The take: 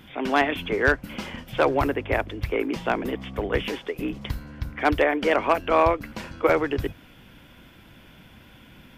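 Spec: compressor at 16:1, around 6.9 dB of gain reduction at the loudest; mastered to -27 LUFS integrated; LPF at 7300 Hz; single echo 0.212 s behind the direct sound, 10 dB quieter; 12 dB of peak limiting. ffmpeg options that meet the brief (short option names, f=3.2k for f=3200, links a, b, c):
-af "lowpass=7.3k,acompressor=threshold=-21dB:ratio=16,alimiter=limit=-23.5dB:level=0:latency=1,aecho=1:1:212:0.316,volume=6.5dB"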